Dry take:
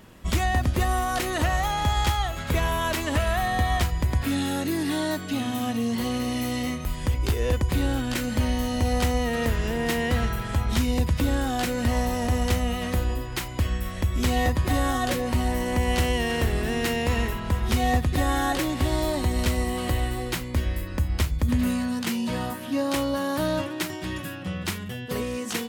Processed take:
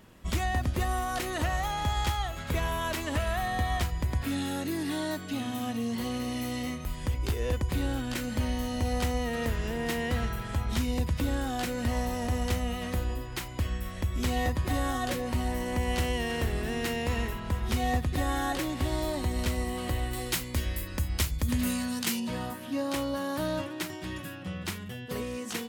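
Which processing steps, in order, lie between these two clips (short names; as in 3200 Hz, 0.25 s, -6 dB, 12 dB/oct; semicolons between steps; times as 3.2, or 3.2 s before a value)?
20.13–22.2 bell 15000 Hz +10 dB 2.5 oct; gain -5.5 dB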